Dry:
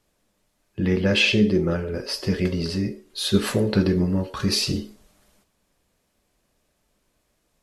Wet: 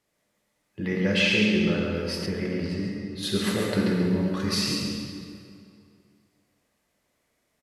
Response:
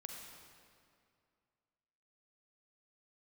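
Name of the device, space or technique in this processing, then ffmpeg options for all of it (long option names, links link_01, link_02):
PA in a hall: -filter_complex "[0:a]highpass=frequency=130:poles=1,equalizer=frequency=2000:width_type=o:width=0.25:gain=7,aecho=1:1:138:0.531[link_01];[1:a]atrim=start_sample=2205[link_02];[link_01][link_02]afir=irnorm=-1:irlink=0,asettb=1/sr,asplit=3[link_03][link_04][link_05];[link_03]atrim=end=2.264[link_06];[link_04]atrim=start=2.26:end=3.23,asetpts=PTS-STARTPTS,afade=type=in:duration=0.004:curve=qsin,afade=type=out:start_time=0.966:duration=0.004:curve=qsin,highshelf=frequency=2900:gain=-10[link_07];[link_05]atrim=start=3.226[link_08];[link_06][link_07]acrossfade=duration=0.004:curve1=hsin:curve2=qsin[link_09];[link_09][link_08]acrossfade=duration=0.004:curve1=qsin:curve2=hsin"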